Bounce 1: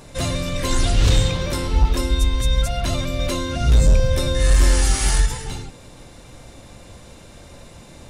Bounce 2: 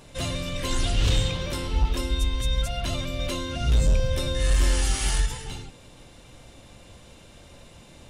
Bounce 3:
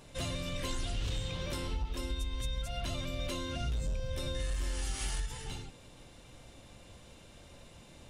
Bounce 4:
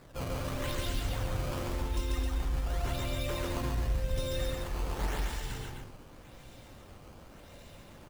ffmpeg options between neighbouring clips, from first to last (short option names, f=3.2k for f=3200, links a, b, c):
-af "equalizer=f=3k:w=2.8:g=6,volume=-6.5dB"
-af "acompressor=threshold=-26dB:ratio=6,volume=-5.5dB"
-af "acrusher=samples=14:mix=1:aa=0.000001:lfo=1:lforange=22.4:lforate=0.89,aecho=1:1:139.9|262.4:0.794|0.501"